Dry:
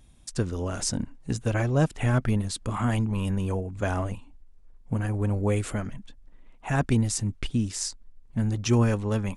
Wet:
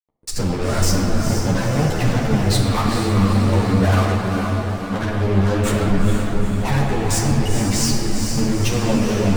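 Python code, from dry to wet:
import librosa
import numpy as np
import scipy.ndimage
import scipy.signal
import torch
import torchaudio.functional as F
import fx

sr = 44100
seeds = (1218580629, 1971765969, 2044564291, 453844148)

p1 = fx.highpass(x, sr, hz=1400.0, slope=6, at=(3.91, 5.03))
p2 = fx.spec_gate(p1, sr, threshold_db=-20, keep='strong')
p3 = fx.high_shelf(p2, sr, hz=5800.0, db=-11.5)
p4 = fx.over_compress(p3, sr, threshold_db=-34.0, ratio=-1.0)
p5 = p3 + F.gain(torch.from_numpy(p4), 2.5).numpy()
p6 = fx.fuzz(p5, sr, gain_db=32.0, gate_db=-36.0)
p7 = p6 + fx.echo_diffused(p6, sr, ms=455, feedback_pct=59, wet_db=-5.5, dry=0)
p8 = fx.room_shoebox(p7, sr, seeds[0], volume_m3=150.0, walls='hard', distance_m=0.45)
p9 = fx.ensemble(p8, sr)
y = F.gain(torch.from_numpy(p9), -3.5).numpy()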